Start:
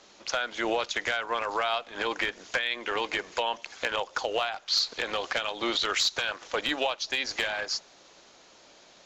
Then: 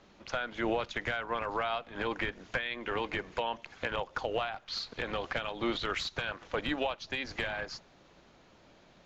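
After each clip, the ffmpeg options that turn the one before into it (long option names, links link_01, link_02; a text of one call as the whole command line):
ffmpeg -i in.wav -af "bass=frequency=250:gain=14,treble=frequency=4000:gain=-13,volume=-4.5dB" out.wav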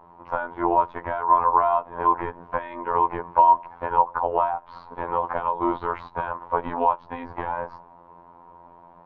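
ffmpeg -i in.wav -af "afftfilt=real='hypot(re,im)*cos(PI*b)':imag='0':win_size=2048:overlap=0.75,lowpass=frequency=970:width_type=q:width=10,volume=7.5dB" out.wav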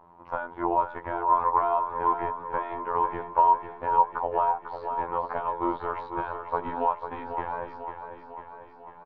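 ffmpeg -i in.wav -af "aecho=1:1:497|994|1491|1988|2485|2982|3479|3976:0.376|0.226|0.135|0.0812|0.0487|0.0292|0.0175|0.0105,volume=-4.5dB" out.wav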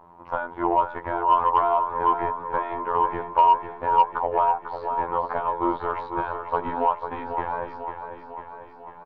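ffmpeg -i in.wav -af "asoftclip=type=tanh:threshold=-11dB,volume=4dB" out.wav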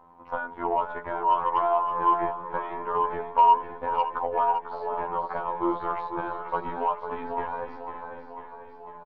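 ffmpeg -i in.wav -af "aecho=1:1:562:0.299,flanger=delay=3.9:depth=1.9:regen=27:speed=0.25:shape=sinusoidal" out.wav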